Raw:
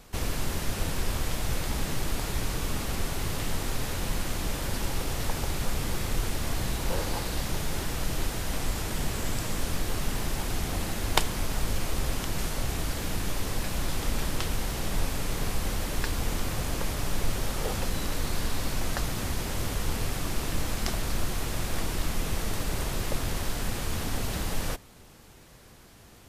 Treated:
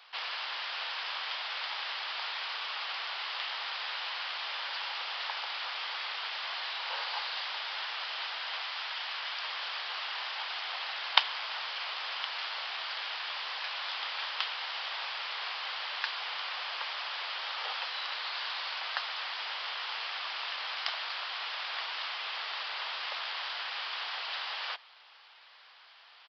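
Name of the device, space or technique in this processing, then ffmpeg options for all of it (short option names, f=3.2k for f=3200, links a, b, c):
musical greeting card: -filter_complex "[0:a]asettb=1/sr,asplit=3[a][b][c];[a]atrim=end=8.614[d];[b]atrim=start=8.61:end=9.42,asetpts=PTS-STARTPTS,afade=t=in:d=0.004:c=qsin,afade=t=out:st=0.806:d=0.004:c=qsin,highpass=f=510:p=1[e];[c]atrim=start=9.416[f];[d][e]acrossfade=d=0.004:c1=hsin:c2=qsin[g];[g][f]acrossfade=d=0.004:c1=qsin:c2=hsin,aresample=11025,aresample=44100,highpass=f=860:w=0.5412,highpass=f=860:w=1.3066,equalizer=f=3.1k:t=o:w=0.45:g=5,volume=1.5dB"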